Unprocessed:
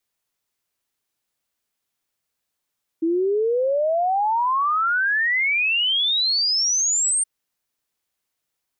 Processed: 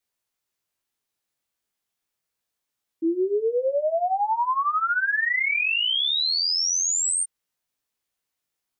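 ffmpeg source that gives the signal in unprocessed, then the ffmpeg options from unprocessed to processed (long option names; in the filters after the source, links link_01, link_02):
-f lavfi -i "aevalsrc='0.133*clip(min(t,4.22-t)/0.01,0,1)*sin(2*PI*320*4.22/log(8900/320)*(exp(log(8900/320)*t/4.22)-1))':duration=4.22:sample_rate=44100"
-af "flanger=delay=17:depth=4.1:speed=0.38"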